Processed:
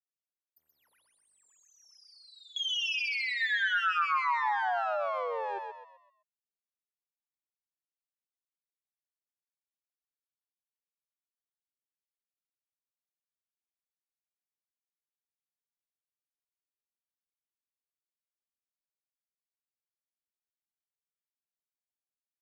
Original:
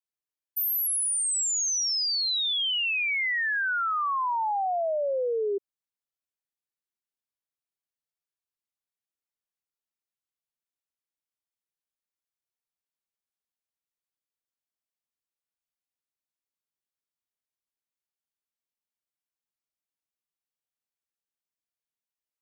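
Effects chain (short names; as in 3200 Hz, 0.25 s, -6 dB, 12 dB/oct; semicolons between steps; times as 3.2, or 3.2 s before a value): minimum comb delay 8.3 ms; treble ducked by the level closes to 2800 Hz, closed at -28 dBFS; gate with hold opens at -25 dBFS; HPF 730 Hz 12 dB/oct; 1.79–3.38 negative-ratio compressor -33 dBFS; frequency-shifting echo 0.128 s, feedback 38%, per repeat +48 Hz, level -4 dB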